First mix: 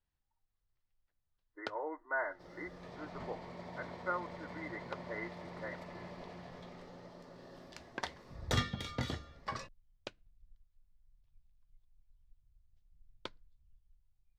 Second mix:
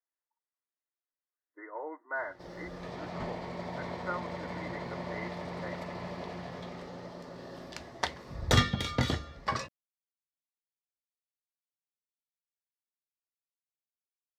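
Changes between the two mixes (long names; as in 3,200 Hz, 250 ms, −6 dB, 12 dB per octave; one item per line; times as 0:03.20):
first sound: muted
second sound +8.5 dB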